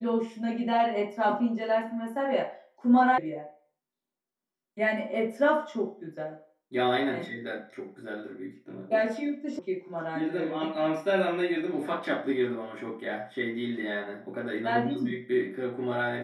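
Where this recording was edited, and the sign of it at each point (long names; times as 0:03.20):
0:03.18: cut off before it has died away
0:09.59: cut off before it has died away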